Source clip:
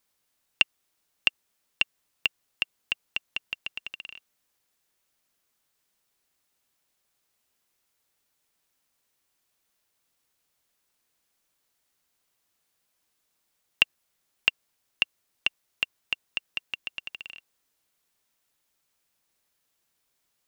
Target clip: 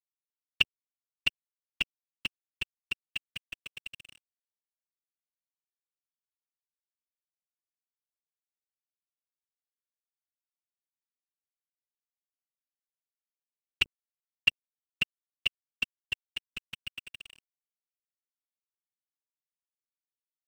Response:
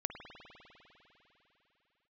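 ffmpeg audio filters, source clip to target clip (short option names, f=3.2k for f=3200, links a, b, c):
-af "equalizer=f=690:t=o:w=2.1:g=-9,bandreject=f=50:t=h:w=6,bandreject=f=100:t=h:w=6,bandreject=f=150:t=h:w=6,afftfilt=real='hypot(re,im)*cos(2*PI*random(0))':imag='hypot(re,im)*sin(2*PI*random(1))':win_size=512:overlap=0.75,lowshelf=f=350:g=12,aeval=exprs='sgn(val(0))*max(abs(val(0))-0.00355,0)':c=same,volume=3.5dB"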